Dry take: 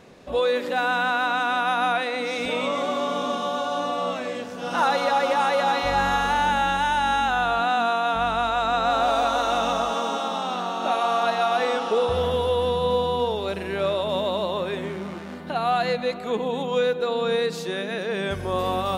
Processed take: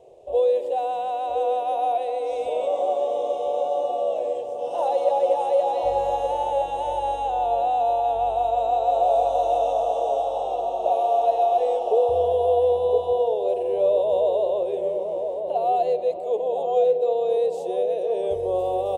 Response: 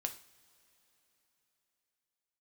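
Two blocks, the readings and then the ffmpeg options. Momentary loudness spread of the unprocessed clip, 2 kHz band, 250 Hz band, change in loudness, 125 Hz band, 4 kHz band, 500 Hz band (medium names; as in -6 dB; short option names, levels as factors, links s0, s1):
6 LU, under -20 dB, under -10 dB, +1.0 dB, under -10 dB, -14.5 dB, +4.0 dB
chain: -filter_complex "[0:a]firequalizer=gain_entry='entry(110,0);entry(220,-20);entry(370,8);entry(650,14);entry(1400,-24);entry(2900,-3);entry(4300,-11);entry(8400,2);entry(12000,-6)':delay=0.05:min_phase=1,asplit=2[s0][s1];[s1]adelay=1014,lowpass=f=1000:p=1,volume=0.531,asplit=2[s2][s3];[s3]adelay=1014,lowpass=f=1000:p=1,volume=0.44,asplit=2[s4][s5];[s5]adelay=1014,lowpass=f=1000:p=1,volume=0.44,asplit=2[s6][s7];[s7]adelay=1014,lowpass=f=1000:p=1,volume=0.44,asplit=2[s8][s9];[s9]adelay=1014,lowpass=f=1000:p=1,volume=0.44[s10];[s2][s4][s6][s8][s10]amix=inputs=5:normalize=0[s11];[s0][s11]amix=inputs=2:normalize=0,volume=0.398"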